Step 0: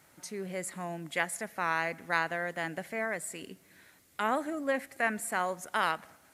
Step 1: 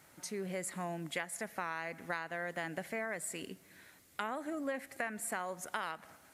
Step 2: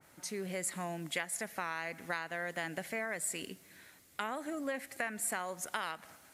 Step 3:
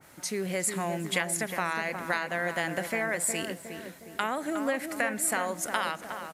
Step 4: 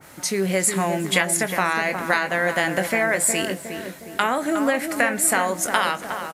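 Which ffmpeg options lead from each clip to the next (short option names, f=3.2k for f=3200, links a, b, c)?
-af "acompressor=threshold=-34dB:ratio=10"
-af "adynamicequalizer=threshold=0.00224:dfrequency=2100:dqfactor=0.7:tfrequency=2100:tqfactor=0.7:attack=5:release=100:ratio=0.375:range=2.5:mode=boostabove:tftype=highshelf"
-filter_complex "[0:a]asplit=2[a][b];[b]adelay=362,lowpass=f=1.4k:p=1,volume=-6.5dB,asplit=2[c][d];[d]adelay=362,lowpass=f=1.4k:p=1,volume=0.53,asplit=2[e][f];[f]adelay=362,lowpass=f=1.4k:p=1,volume=0.53,asplit=2[g][h];[h]adelay=362,lowpass=f=1.4k:p=1,volume=0.53,asplit=2[i][j];[j]adelay=362,lowpass=f=1.4k:p=1,volume=0.53,asplit=2[k][l];[l]adelay=362,lowpass=f=1.4k:p=1,volume=0.53,asplit=2[m][n];[n]adelay=362,lowpass=f=1.4k:p=1,volume=0.53[o];[a][c][e][g][i][k][m][o]amix=inputs=8:normalize=0,volume=7.5dB"
-filter_complex "[0:a]asplit=2[a][b];[b]adelay=21,volume=-11dB[c];[a][c]amix=inputs=2:normalize=0,volume=8.5dB"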